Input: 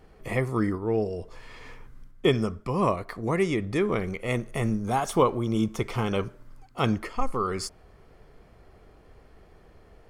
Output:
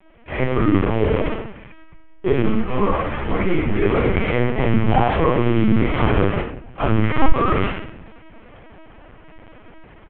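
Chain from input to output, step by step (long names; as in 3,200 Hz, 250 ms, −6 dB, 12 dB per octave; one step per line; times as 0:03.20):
linear delta modulator 16 kbit/s, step −29 dBFS
noise gate with hold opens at −25 dBFS
low-shelf EQ 71 Hz −7.5 dB
automatic gain control gain up to 7 dB
brickwall limiter −13.5 dBFS, peak gain reduction 9 dB
single-tap delay 101 ms −16 dB
rectangular room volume 130 cubic metres, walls mixed, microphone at 3.2 metres
linear-prediction vocoder at 8 kHz pitch kept
0:02.42–0:03.86: string-ensemble chorus
level −7 dB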